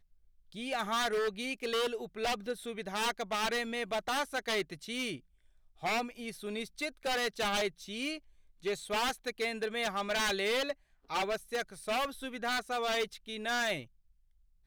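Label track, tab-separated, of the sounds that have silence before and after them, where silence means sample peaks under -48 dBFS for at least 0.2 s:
0.520000	5.190000	sound
5.830000	8.180000	sound
8.630000	10.730000	sound
11.100000	13.850000	sound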